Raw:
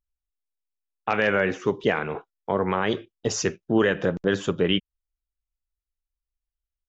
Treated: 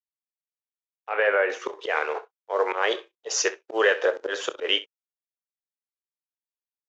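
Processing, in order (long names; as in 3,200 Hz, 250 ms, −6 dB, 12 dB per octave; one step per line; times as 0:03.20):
mu-law and A-law mismatch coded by A
elliptic band-pass filter 470–6,600 Hz, stop band 40 dB
volume swells 122 ms
in parallel at −2.5 dB: downward compressor, threshold −32 dBFS, peak gain reduction 12.5 dB
0:01.09–0:01.50: on the sum: high-frequency loss of the air 430 metres
on a send: ambience of single reflections 27 ms −14 dB, 64 ms −17 dB
on the sum: level +2.5 dB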